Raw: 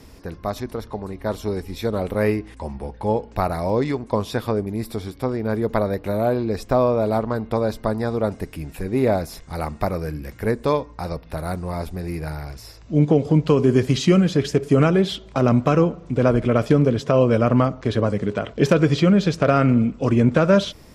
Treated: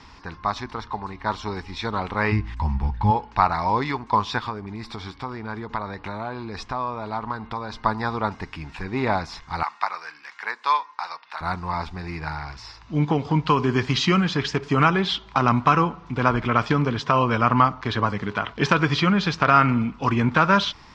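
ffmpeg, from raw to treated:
ffmpeg -i in.wav -filter_complex "[0:a]asplit=3[link_01][link_02][link_03];[link_01]afade=type=out:start_time=2.31:duration=0.02[link_04];[link_02]asubboost=boost=9.5:cutoff=170,afade=type=in:start_time=2.31:duration=0.02,afade=type=out:start_time=3.1:duration=0.02[link_05];[link_03]afade=type=in:start_time=3.1:duration=0.02[link_06];[link_04][link_05][link_06]amix=inputs=3:normalize=0,asplit=3[link_07][link_08][link_09];[link_07]afade=type=out:start_time=4.38:duration=0.02[link_10];[link_08]acompressor=threshold=-24dB:ratio=4:attack=3.2:release=140:knee=1:detection=peak,afade=type=in:start_time=4.38:duration=0.02,afade=type=out:start_time=7.76:duration=0.02[link_11];[link_09]afade=type=in:start_time=7.76:duration=0.02[link_12];[link_10][link_11][link_12]amix=inputs=3:normalize=0,asettb=1/sr,asplit=3[link_13][link_14][link_15];[link_13]atrim=end=9.634[link_16];[link_14]atrim=start=9.63:end=11.41,asetpts=PTS-STARTPTS,afade=type=in:duration=0.004:curve=qsin,afade=type=out:start_time=1.776:duration=0.004:curve=qsin,highpass=990[link_17];[link_15]atrim=start=11.406[link_18];[link_16][link_17]acrossfade=duration=0.004:curve1=hsin:curve2=qsin[link_19];[link_19][link_18]acrossfade=duration=0.004:curve1=qsin:curve2=hsin,lowpass=frequency=5400:width=0.5412,lowpass=frequency=5400:width=1.3066,lowshelf=frequency=730:width_type=q:width=3:gain=-8,volume=4dB" out.wav

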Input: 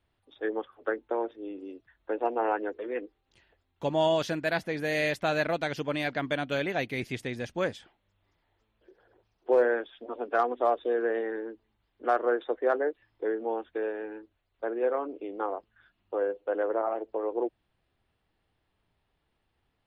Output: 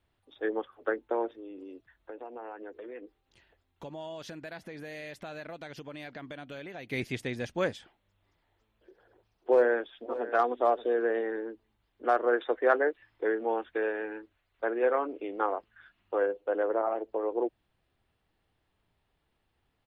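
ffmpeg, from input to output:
ffmpeg -i in.wav -filter_complex "[0:a]asettb=1/sr,asplit=3[link_01][link_02][link_03];[link_01]atrim=end=1.344[link_04];[link_02]atrim=start=1.34:end=6.91,asetpts=PTS-STARTPTS,afade=type=in:duration=0.004:curve=qsin,afade=type=out:start_time=5.566:duration=0.004:curve=qsin,acompressor=threshold=-41dB:ratio=4:attack=3.2:release=140:knee=1:detection=peak[link_05];[link_03]atrim=start=6.906[link_06];[link_04][link_05]acrossfade=duration=0.004:curve1=hsin:curve2=qsin[link_07];[link_07][link_06]acrossfade=duration=0.004:curve1=qsin:curve2=hsin,asplit=2[link_08][link_09];[link_09]afade=type=in:start_time=9.5:duration=0.01,afade=type=out:start_time=10.32:duration=0.01,aecho=0:1:580|1160:0.188365|0.0282547[link_10];[link_08][link_10]amix=inputs=2:normalize=0,asettb=1/sr,asplit=3[link_11][link_12][link_13];[link_11]atrim=end=12.334[link_14];[link_12]atrim=start=12.33:end=16.26,asetpts=PTS-STARTPTS,afade=type=in:duration=0.004:curve=qsin,afade=type=out:start_time=3.926:duration=0.004:curve=qsin,equalizer=frequency=1900:width_type=o:width=1.9:gain=7[link_15];[link_13]atrim=start=16.256[link_16];[link_14][link_15]acrossfade=duration=0.004:curve1=hsin:curve2=qsin[link_17];[link_17][link_16]acrossfade=duration=0.004:curve1=qsin:curve2=hsin" out.wav

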